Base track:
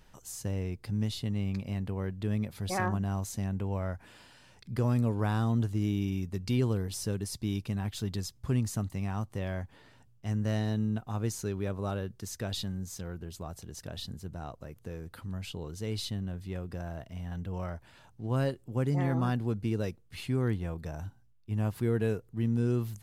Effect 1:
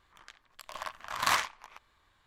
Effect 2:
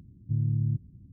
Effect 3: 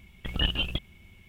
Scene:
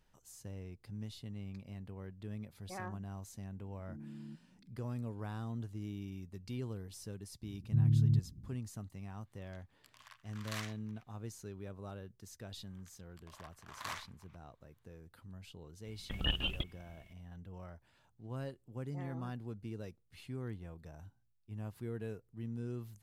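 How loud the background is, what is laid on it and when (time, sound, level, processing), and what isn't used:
base track −13 dB
0:03.58: mix in 2 −6.5 dB + Butterworth high-pass 170 Hz 72 dB per octave
0:07.43: mix in 2 −1 dB
0:09.25: mix in 1 −14 dB + high-pass filter 1,500 Hz
0:12.58: mix in 1 −16 dB
0:15.85: mix in 3 −7 dB

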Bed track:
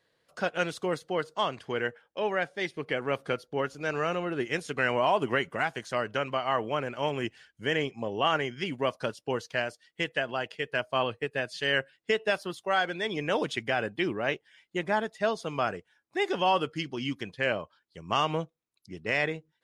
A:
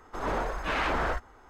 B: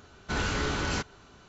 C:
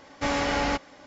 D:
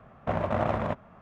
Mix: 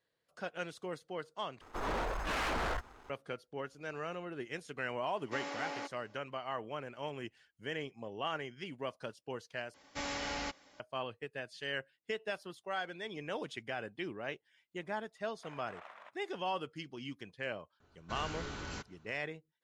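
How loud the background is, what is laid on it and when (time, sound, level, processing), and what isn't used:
bed track −11.5 dB
0:01.61: overwrite with A −11.5 dB + leveller curve on the samples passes 3
0:05.10: mix in C −15 dB + Butterworth high-pass 270 Hz
0:09.74: overwrite with C −15 dB + high-shelf EQ 2,200 Hz +9 dB
0:15.16: mix in D −14 dB + high-pass filter 1,400 Hz
0:17.80: mix in B −13 dB + one half of a high-frequency compander decoder only

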